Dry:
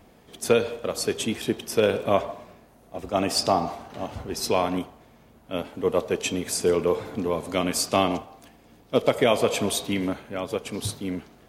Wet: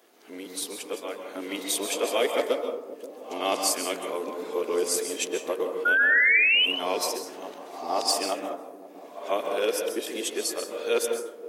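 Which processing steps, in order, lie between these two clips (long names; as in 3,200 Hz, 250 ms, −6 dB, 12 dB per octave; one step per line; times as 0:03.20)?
played backwards from end to start
Chebyshev high-pass filter 330 Hz, order 3
high-shelf EQ 4,500 Hz +7.5 dB
on a send: delay with a low-pass on its return 530 ms, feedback 63%, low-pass 530 Hz, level −12.5 dB
on the sum: sound drawn into the spectrogram rise, 0:05.85–0:06.66, 1,400–3,100 Hz −16 dBFS
dense smooth reverb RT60 0.77 s, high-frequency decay 0.35×, pre-delay 120 ms, DRR 4 dB
level −5 dB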